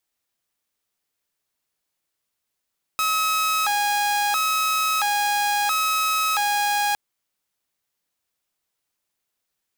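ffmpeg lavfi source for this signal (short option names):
-f lavfi -i "aevalsrc='0.141*(2*mod((1051.5*t+228.5/0.74*(0.5-abs(mod(0.74*t,1)-0.5))),1)-1)':d=3.96:s=44100"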